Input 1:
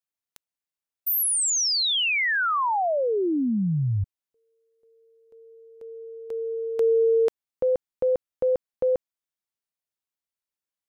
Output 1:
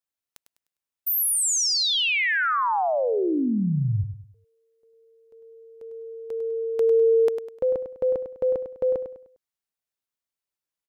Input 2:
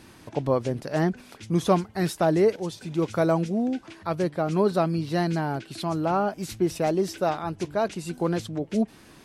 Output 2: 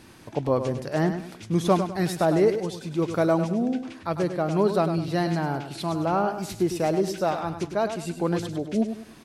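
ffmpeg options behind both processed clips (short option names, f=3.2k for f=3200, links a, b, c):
-af "aecho=1:1:101|202|303|404:0.355|0.121|0.041|0.0139"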